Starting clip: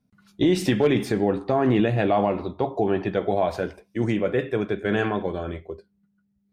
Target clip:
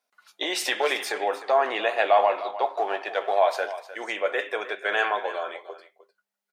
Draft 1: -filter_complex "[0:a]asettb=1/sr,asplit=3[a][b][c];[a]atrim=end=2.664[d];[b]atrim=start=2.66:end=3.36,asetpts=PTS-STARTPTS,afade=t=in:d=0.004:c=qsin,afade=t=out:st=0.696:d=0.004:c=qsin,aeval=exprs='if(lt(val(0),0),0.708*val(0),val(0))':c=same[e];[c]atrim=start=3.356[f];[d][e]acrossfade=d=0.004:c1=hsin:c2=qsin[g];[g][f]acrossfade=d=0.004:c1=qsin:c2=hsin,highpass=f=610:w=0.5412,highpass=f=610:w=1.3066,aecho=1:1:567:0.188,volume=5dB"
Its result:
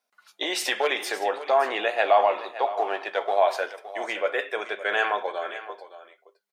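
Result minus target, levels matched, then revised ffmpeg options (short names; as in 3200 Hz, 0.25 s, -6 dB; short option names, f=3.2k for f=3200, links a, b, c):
echo 0.262 s late
-filter_complex "[0:a]asettb=1/sr,asplit=3[a][b][c];[a]atrim=end=2.664[d];[b]atrim=start=2.66:end=3.36,asetpts=PTS-STARTPTS,afade=t=in:d=0.004:c=qsin,afade=t=out:st=0.696:d=0.004:c=qsin,aeval=exprs='if(lt(val(0),0),0.708*val(0),val(0))':c=same[e];[c]atrim=start=3.356[f];[d][e]acrossfade=d=0.004:c1=hsin:c2=qsin[g];[g][f]acrossfade=d=0.004:c1=qsin:c2=hsin,highpass=f=610:w=0.5412,highpass=f=610:w=1.3066,aecho=1:1:305:0.188,volume=5dB"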